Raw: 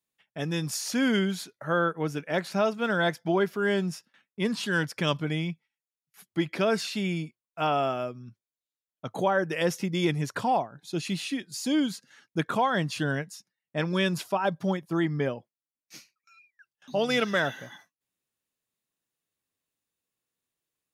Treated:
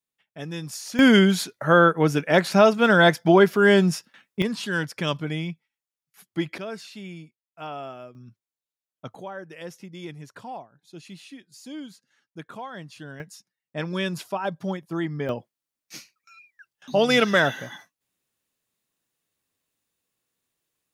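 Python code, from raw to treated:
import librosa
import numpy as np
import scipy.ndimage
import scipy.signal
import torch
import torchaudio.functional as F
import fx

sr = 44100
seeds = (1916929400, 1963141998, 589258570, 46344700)

y = fx.gain(x, sr, db=fx.steps((0.0, -3.5), (0.99, 9.5), (4.42, 0.5), (6.58, -9.5), (8.15, -1.5), (9.15, -12.0), (13.2, -1.5), (15.29, 6.5)))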